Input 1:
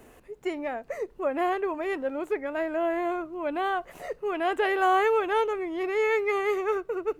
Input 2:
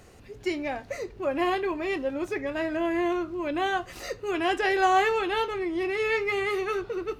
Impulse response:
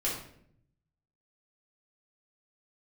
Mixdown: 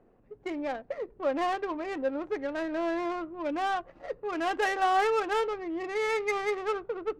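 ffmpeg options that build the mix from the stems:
-filter_complex "[0:a]agate=range=-8dB:threshold=-40dB:ratio=16:detection=peak,volume=-2dB[a];[1:a]volume=-9dB[b];[a][b]amix=inputs=2:normalize=0,adynamicsmooth=sensitivity=4:basefreq=950,equalizer=f=72:w=1.3:g=-14"

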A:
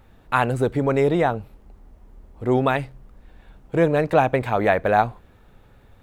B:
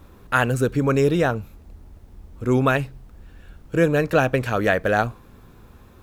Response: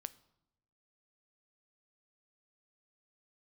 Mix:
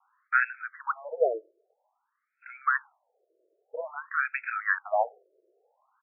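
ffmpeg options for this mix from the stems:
-filter_complex "[0:a]flanger=delay=19:depth=4.7:speed=2.4,volume=-14.5dB,asplit=2[a][b];[1:a]adelay=4.1,volume=-1.5dB[c];[b]apad=whole_len=265712[d];[c][d]sidechaingate=range=-9dB:threshold=-56dB:ratio=16:detection=peak[e];[a][e]amix=inputs=2:normalize=0,afftfilt=real='re*between(b*sr/1024,460*pow(1900/460,0.5+0.5*sin(2*PI*0.51*pts/sr))/1.41,460*pow(1900/460,0.5+0.5*sin(2*PI*0.51*pts/sr))*1.41)':imag='im*between(b*sr/1024,460*pow(1900/460,0.5+0.5*sin(2*PI*0.51*pts/sr))/1.41,460*pow(1900/460,0.5+0.5*sin(2*PI*0.51*pts/sr))*1.41)':win_size=1024:overlap=0.75"

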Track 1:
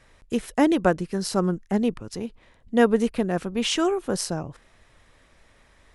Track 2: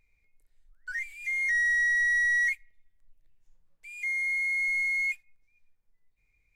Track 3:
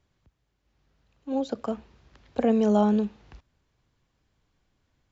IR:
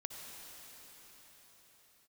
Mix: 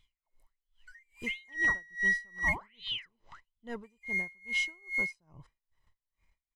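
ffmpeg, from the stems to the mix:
-filter_complex "[0:a]lowpass=7.7k,agate=range=-11dB:threshold=-54dB:ratio=16:detection=peak,asoftclip=type=tanh:threshold=-9.5dB,adelay=900,volume=-13.5dB[a];[1:a]volume=-3dB[b];[2:a]alimiter=limit=-18.5dB:level=0:latency=1:release=102,aeval=exprs='val(0)*sin(2*PI*1900*n/s+1900*0.8/1.4*sin(2*PI*1.4*n/s))':c=same,volume=-1.5dB[c];[a][c]amix=inputs=2:normalize=0,aecho=1:1:2:0.42,alimiter=level_in=2dB:limit=-24dB:level=0:latency=1:release=244,volume=-2dB,volume=0dB[d];[b][d]amix=inputs=2:normalize=0,aecho=1:1:1:0.59,aeval=exprs='val(0)*pow(10,-32*(0.5-0.5*cos(2*PI*2.4*n/s))/20)':c=same"

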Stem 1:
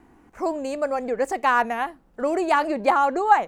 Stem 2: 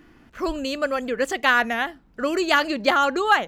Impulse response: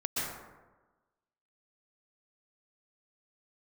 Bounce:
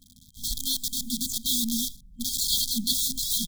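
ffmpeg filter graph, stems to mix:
-filter_complex "[0:a]asubboost=boost=11.5:cutoff=160,volume=-5dB[a];[1:a]acrusher=bits=5:dc=4:mix=0:aa=0.000001,adelay=18,volume=1dB[b];[a][b]amix=inputs=2:normalize=0,afftfilt=real='re*(1-between(b*sr/4096,260,3200))':imag='im*(1-between(b*sr/4096,260,3200))':win_size=4096:overlap=0.75,highshelf=f=3.7k:g=6"

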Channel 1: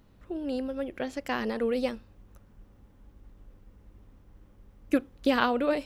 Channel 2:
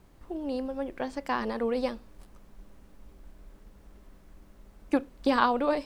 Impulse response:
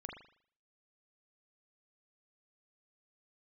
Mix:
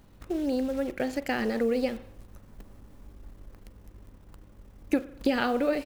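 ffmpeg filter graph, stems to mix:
-filter_complex "[0:a]volume=0.5dB,asplit=2[a][b];[b]volume=-5.5dB[c];[1:a]acrusher=bits=8:dc=4:mix=0:aa=0.000001,adelay=0.5,volume=-2.5dB[d];[2:a]atrim=start_sample=2205[e];[c][e]afir=irnorm=-1:irlink=0[f];[a][d][f]amix=inputs=3:normalize=0,acompressor=threshold=-26dB:ratio=2"

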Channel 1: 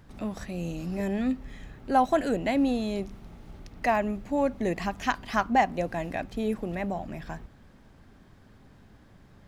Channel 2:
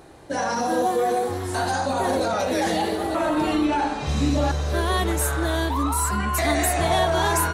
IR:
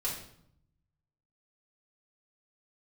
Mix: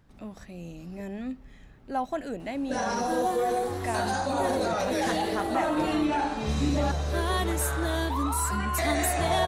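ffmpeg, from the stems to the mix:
-filter_complex "[0:a]volume=-7.5dB[a];[1:a]adelay=2400,volume=-4.5dB[b];[a][b]amix=inputs=2:normalize=0"

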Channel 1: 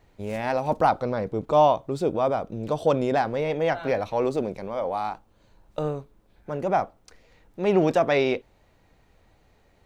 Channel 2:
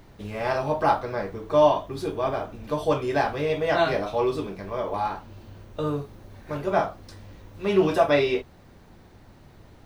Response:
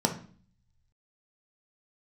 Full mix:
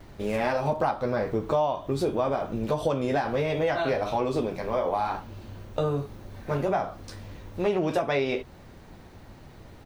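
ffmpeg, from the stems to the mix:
-filter_complex "[0:a]volume=2dB[a];[1:a]acompressor=threshold=-23dB:ratio=6,adelay=5.1,volume=2.5dB[b];[a][b]amix=inputs=2:normalize=0,acompressor=threshold=-23dB:ratio=4"

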